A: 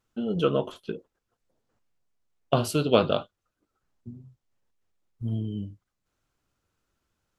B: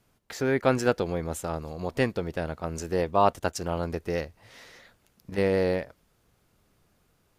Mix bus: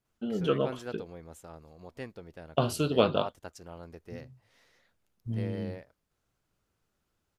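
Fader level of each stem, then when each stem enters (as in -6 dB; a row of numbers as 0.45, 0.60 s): -3.5, -16.0 dB; 0.05, 0.00 s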